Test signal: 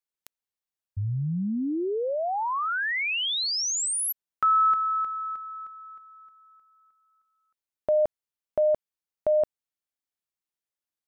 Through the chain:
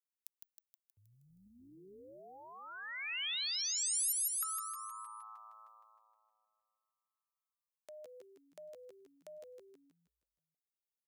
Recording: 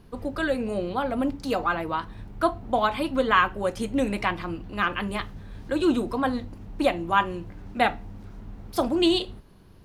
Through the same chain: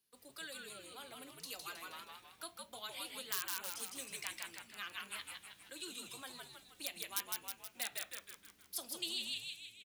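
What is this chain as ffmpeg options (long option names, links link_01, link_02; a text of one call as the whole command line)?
ffmpeg -i in.wav -filter_complex "[0:a]agate=range=-9dB:threshold=-41dB:ratio=3:release=159:detection=rms,asplit=2[link_01][link_02];[link_02]aeval=exprs='(mod(2.99*val(0)+1,2)-1)/2.99':channel_layout=same,volume=-5dB[link_03];[link_01][link_03]amix=inputs=2:normalize=0,equalizer=frequency=970:width_type=o:width=1.6:gain=-7,asplit=2[link_04][link_05];[link_05]asplit=7[link_06][link_07][link_08][link_09][link_10][link_11][link_12];[link_06]adelay=158,afreqshift=-110,volume=-3dB[link_13];[link_07]adelay=316,afreqshift=-220,volume=-8.5dB[link_14];[link_08]adelay=474,afreqshift=-330,volume=-14dB[link_15];[link_09]adelay=632,afreqshift=-440,volume=-19.5dB[link_16];[link_10]adelay=790,afreqshift=-550,volume=-25.1dB[link_17];[link_11]adelay=948,afreqshift=-660,volume=-30.6dB[link_18];[link_12]adelay=1106,afreqshift=-770,volume=-36.1dB[link_19];[link_13][link_14][link_15][link_16][link_17][link_18][link_19]amix=inputs=7:normalize=0[link_20];[link_04][link_20]amix=inputs=2:normalize=0,acrossover=split=300|2800[link_21][link_22][link_23];[link_21]acompressor=threshold=-23dB:ratio=4[link_24];[link_22]acompressor=threshold=-23dB:ratio=4[link_25];[link_23]acompressor=threshold=-28dB:ratio=4[link_26];[link_24][link_25][link_26]amix=inputs=3:normalize=0,aderivative,volume=-6dB" out.wav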